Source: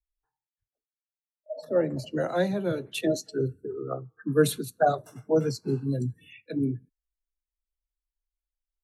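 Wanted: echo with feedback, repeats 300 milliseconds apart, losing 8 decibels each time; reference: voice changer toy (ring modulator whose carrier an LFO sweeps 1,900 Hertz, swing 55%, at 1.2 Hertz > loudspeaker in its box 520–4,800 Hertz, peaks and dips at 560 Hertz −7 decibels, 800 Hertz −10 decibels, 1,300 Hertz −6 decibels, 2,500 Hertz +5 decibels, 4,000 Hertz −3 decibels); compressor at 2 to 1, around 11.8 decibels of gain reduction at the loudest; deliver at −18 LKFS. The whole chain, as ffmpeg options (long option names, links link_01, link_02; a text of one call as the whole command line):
ffmpeg -i in.wav -af "acompressor=threshold=-38dB:ratio=2,aecho=1:1:300|600|900|1200|1500:0.398|0.159|0.0637|0.0255|0.0102,aeval=exprs='val(0)*sin(2*PI*1900*n/s+1900*0.55/1.2*sin(2*PI*1.2*n/s))':channel_layout=same,highpass=520,equalizer=frequency=560:width_type=q:width=4:gain=-7,equalizer=frequency=800:width_type=q:width=4:gain=-10,equalizer=frequency=1300:width_type=q:width=4:gain=-6,equalizer=frequency=2500:width_type=q:width=4:gain=5,equalizer=frequency=4000:width_type=q:width=4:gain=-3,lowpass=frequency=4800:width=0.5412,lowpass=frequency=4800:width=1.3066,volume=18dB" out.wav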